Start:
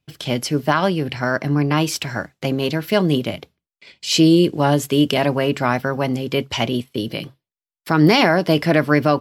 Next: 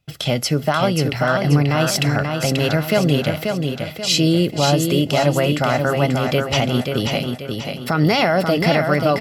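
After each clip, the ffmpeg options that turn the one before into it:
-filter_complex "[0:a]aecho=1:1:1.5:0.44,alimiter=limit=0.266:level=0:latency=1:release=205,asplit=2[s0][s1];[s1]aecho=0:1:535|1070|1605|2140|2675:0.562|0.236|0.0992|0.0417|0.0175[s2];[s0][s2]amix=inputs=2:normalize=0,volume=1.68"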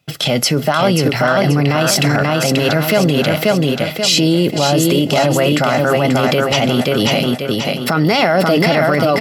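-af "alimiter=limit=0.224:level=0:latency=1:release=18,acontrast=66,highpass=150,volume=1.41"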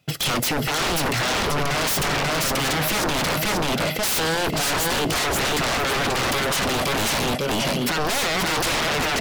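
-af "aeval=exprs='0.133*(abs(mod(val(0)/0.133+3,4)-2)-1)':c=same"

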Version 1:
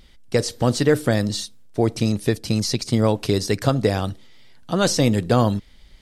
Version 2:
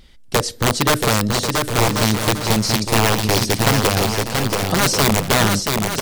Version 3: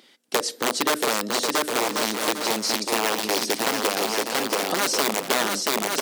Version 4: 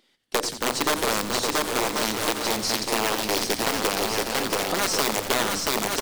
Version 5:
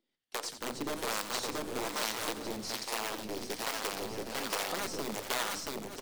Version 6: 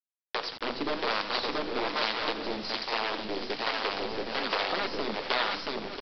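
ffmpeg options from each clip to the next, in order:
-filter_complex "[0:a]aeval=exprs='(mod(3.76*val(0)+1,2)-1)/3.76':c=same,asplit=2[s0][s1];[s1]aecho=0:1:680|1088|1333|1480|1568:0.631|0.398|0.251|0.158|0.1[s2];[s0][s2]amix=inputs=2:normalize=0,volume=1.33"
-af "acompressor=threshold=0.112:ratio=4,highpass=f=260:w=0.5412,highpass=f=260:w=1.3066"
-filter_complex "[0:a]aeval=exprs='if(lt(val(0),0),0.708*val(0),val(0))':c=same,agate=range=0.355:threshold=0.0224:ratio=16:detection=peak,asplit=8[s0][s1][s2][s3][s4][s5][s6][s7];[s1]adelay=87,afreqshift=-110,volume=0.266[s8];[s2]adelay=174,afreqshift=-220,volume=0.164[s9];[s3]adelay=261,afreqshift=-330,volume=0.102[s10];[s4]adelay=348,afreqshift=-440,volume=0.0631[s11];[s5]adelay=435,afreqshift=-550,volume=0.0394[s12];[s6]adelay=522,afreqshift=-660,volume=0.0243[s13];[s7]adelay=609,afreqshift=-770,volume=0.0151[s14];[s0][s8][s9][s10][s11][s12][s13][s14]amix=inputs=8:normalize=0"
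-filter_complex "[0:a]dynaudnorm=f=190:g=5:m=3.76,acrossover=split=540[s0][s1];[s0]aeval=exprs='val(0)*(1-0.7/2+0.7/2*cos(2*PI*1.2*n/s))':c=same[s2];[s1]aeval=exprs='val(0)*(1-0.7/2-0.7/2*cos(2*PI*1.2*n/s))':c=same[s3];[s2][s3]amix=inputs=2:normalize=0,flanger=delay=3:depth=5.2:regen=82:speed=1.6:shape=sinusoidal,volume=0.376"
-af "equalizer=f=100:t=o:w=1.7:g=-11,bandreject=f=167:t=h:w=4,bandreject=f=334:t=h:w=4,bandreject=f=501:t=h:w=4,bandreject=f=668:t=h:w=4,bandreject=f=835:t=h:w=4,bandreject=f=1002:t=h:w=4,bandreject=f=1169:t=h:w=4,bandreject=f=1336:t=h:w=4,bandreject=f=1503:t=h:w=4,bandreject=f=1670:t=h:w=4,bandreject=f=1837:t=h:w=4,bandreject=f=2004:t=h:w=4,bandreject=f=2171:t=h:w=4,bandreject=f=2338:t=h:w=4,bandreject=f=2505:t=h:w=4,bandreject=f=2672:t=h:w=4,bandreject=f=2839:t=h:w=4,bandreject=f=3006:t=h:w=4,bandreject=f=3173:t=h:w=4,bandreject=f=3340:t=h:w=4,bandreject=f=3507:t=h:w=4,bandreject=f=3674:t=h:w=4,bandreject=f=3841:t=h:w=4,bandreject=f=4008:t=h:w=4,bandreject=f=4175:t=h:w=4,bandreject=f=4342:t=h:w=4,bandreject=f=4509:t=h:w=4,bandreject=f=4676:t=h:w=4,bandreject=f=4843:t=h:w=4,bandreject=f=5010:t=h:w=4,bandreject=f=5177:t=h:w=4,bandreject=f=5344:t=h:w=4,bandreject=f=5511:t=h:w=4,bandreject=f=5678:t=h:w=4,bandreject=f=5845:t=h:w=4,bandreject=f=6012:t=h:w=4,bandreject=f=6179:t=h:w=4,bandreject=f=6346:t=h:w=4,bandreject=f=6513:t=h:w=4,aresample=11025,acrusher=bits=7:mix=0:aa=0.000001,aresample=44100,volume=2.11"

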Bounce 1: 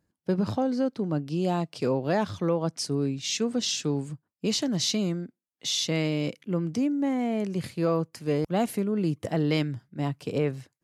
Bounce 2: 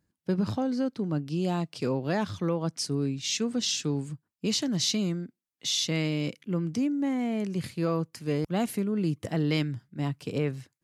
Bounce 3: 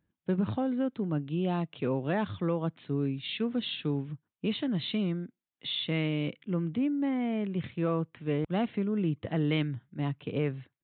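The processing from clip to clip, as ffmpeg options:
-af "equalizer=f=620:t=o:w=1.5:g=-5"
-af "aresample=8000,aresample=44100,volume=0.841"

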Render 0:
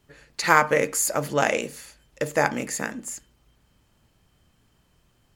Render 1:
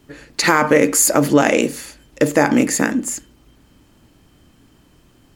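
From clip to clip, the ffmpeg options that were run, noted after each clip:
-af "equalizer=f=290:t=o:w=0.68:g=10.5,alimiter=level_in=3.35:limit=0.891:release=50:level=0:latency=1,volume=0.891"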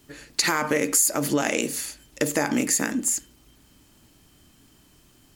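-af "highshelf=f=3400:g=11,bandreject=f=510:w=17,acompressor=threshold=0.2:ratio=3,volume=0.501"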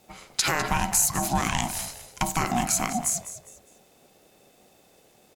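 -filter_complex "[0:a]aeval=exprs='val(0)*sin(2*PI*480*n/s)':c=same,asplit=4[s0][s1][s2][s3];[s1]adelay=203,afreqshift=-52,volume=0.224[s4];[s2]adelay=406,afreqshift=-104,volume=0.0668[s5];[s3]adelay=609,afreqshift=-156,volume=0.0202[s6];[s0][s4][s5][s6]amix=inputs=4:normalize=0,volume=1.12"

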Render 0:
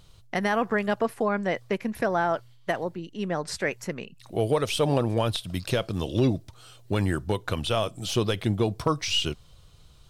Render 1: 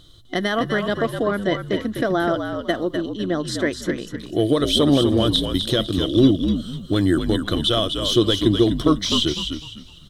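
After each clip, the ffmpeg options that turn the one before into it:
-filter_complex "[0:a]superequalizer=6b=3.16:9b=0.398:12b=0.355:13b=2.82,asplit=2[s0][s1];[s1]asplit=4[s2][s3][s4][s5];[s2]adelay=251,afreqshift=-57,volume=0.473[s6];[s3]adelay=502,afreqshift=-114,volume=0.141[s7];[s4]adelay=753,afreqshift=-171,volume=0.0427[s8];[s5]adelay=1004,afreqshift=-228,volume=0.0127[s9];[s6][s7][s8][s9]amix=inputs=4:normalize=0[s10];[s0][s10]amix=inputs=2:normalize=0,volume=1.41"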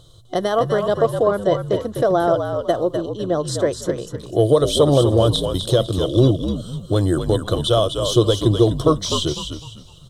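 -af "equalizer=f=125:t=o:w=1:g=10,equalizer=f=250:t=o:w=1:g=-9,equalizer=f=500:t=o:w=1:g=10,equalizer=f=1000:t=o:w=1:g=7,equalizer=f=2000:t=o:w=1:g=-11,equalizer=f=8000:t=o:w=1:g=7,volume=0.841"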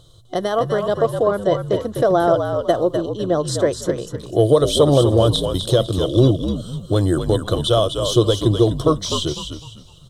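-af "dynaudnorm=f=300:g=13:m=3.76,volume=0.891"

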